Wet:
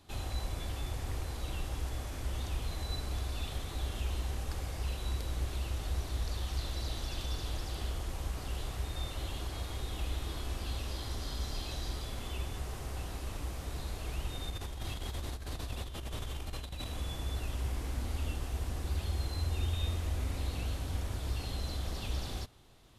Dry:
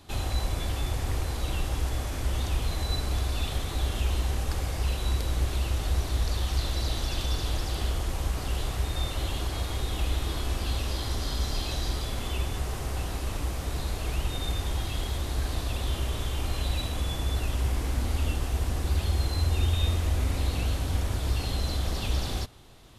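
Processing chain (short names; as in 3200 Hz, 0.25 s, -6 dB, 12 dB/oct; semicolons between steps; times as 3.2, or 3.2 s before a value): 14.5–16.87 negative-ratio compressor -30 dBFS, ratio -0.5; gain -8 dB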